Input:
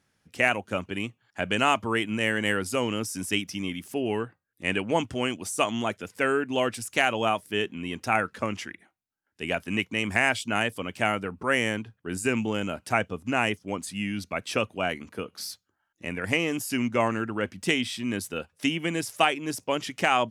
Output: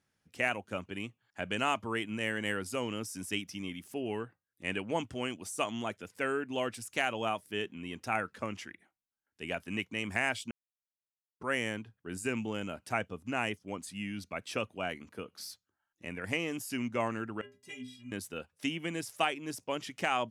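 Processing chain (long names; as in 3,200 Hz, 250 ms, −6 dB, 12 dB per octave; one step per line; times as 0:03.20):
0:10.51–0:11.40: silence
0:17.41–0:18.12: stiff-string resonator 120 Hz, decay 0.49 s, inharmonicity 0.03
level −8 dB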